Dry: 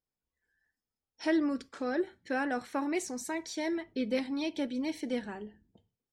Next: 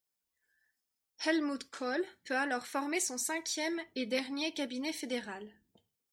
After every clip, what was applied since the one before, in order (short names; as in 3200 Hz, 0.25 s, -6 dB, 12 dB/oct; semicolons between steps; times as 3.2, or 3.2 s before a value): tilt +2.5 dB/oct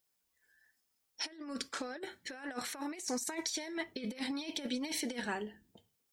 negative-ratio compressor -39 dBFS, ratio -0.5; gain +1 dB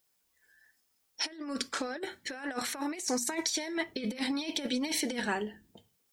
notches 60/120/180/240 Hz; gain +5.5 dB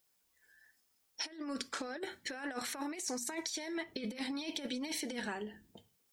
compressor, threshold -35 dBFS, peak gain reduction 8.5 dB; gain -1 dB